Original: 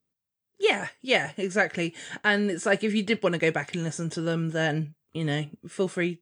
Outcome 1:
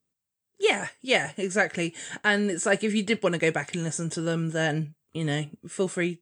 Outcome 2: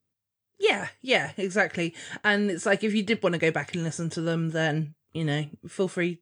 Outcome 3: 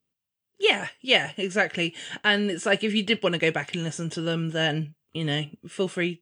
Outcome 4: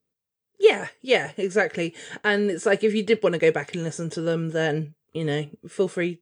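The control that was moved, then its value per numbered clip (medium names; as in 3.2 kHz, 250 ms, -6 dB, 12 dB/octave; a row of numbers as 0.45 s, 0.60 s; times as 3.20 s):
peaking EQ, frequency: 7.9 kHz, 100 Hz, 2.9 kHz, 450 Hz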